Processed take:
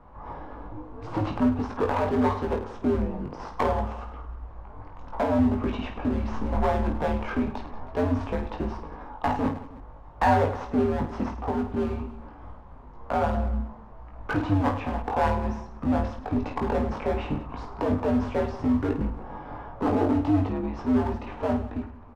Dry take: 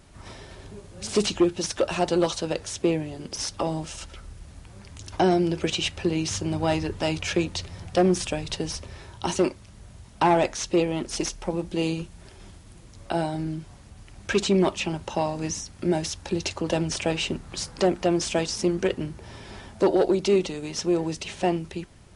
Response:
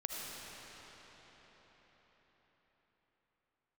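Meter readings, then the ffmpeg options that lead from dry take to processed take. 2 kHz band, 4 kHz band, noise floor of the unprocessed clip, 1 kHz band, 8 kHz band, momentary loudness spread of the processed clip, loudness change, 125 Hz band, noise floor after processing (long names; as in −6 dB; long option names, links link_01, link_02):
−2.5 dB, −16.0 dB, −48 dBFS, +2.0 dB, below −20 dB, 17 LU, −1.5 dB, +1.5 dB, −45 dBFS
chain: -filter_complex "[0:a]alimiter=limit=-17dB:level=0:latency=1:release=22,lowpass=frequency=1100:width_type=q:width=3.6,aeval=exprs='clip(val(0),-1,0.0531)':channel_layout=same,afreqshift=-97,asplit=2[link_01][link_02];[link_02]aecho=0:1:20|52|103.2|185.1|316.2:0.631|0.398|0.251|0.158|0.1[link_03];[link_01][link_03]amix=inputs=2:normalize=0"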